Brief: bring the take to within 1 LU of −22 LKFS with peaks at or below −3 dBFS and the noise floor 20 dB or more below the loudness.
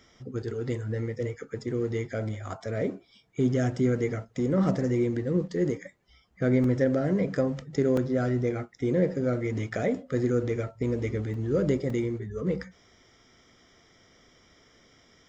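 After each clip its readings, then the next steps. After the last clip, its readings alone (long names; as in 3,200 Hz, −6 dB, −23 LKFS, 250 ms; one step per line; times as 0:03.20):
number of dropouts 4; longest dropout 2.8 ms; integrated loudness −28.5 LKFS; sample peak −12.0 dBFS; target loudness −22.0 LKFS
→ repair the gap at 0:06.64/0:07.97/0:11.34/0:11.90, 2.8 ms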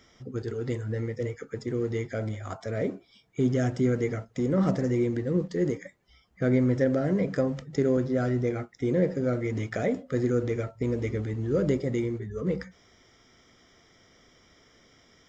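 number of dropouts 0; integrated loudness −28.5 LKFS; sample peak −12.0 dBFS; target loudness −22.0 LKFS
→ level +6.5 dB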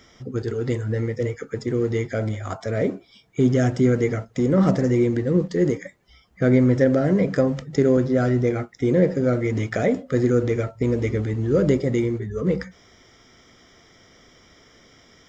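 integrated loudness −22.0 LKFS; sample peak −5.5 dBFS; background noise floor −54 dBFS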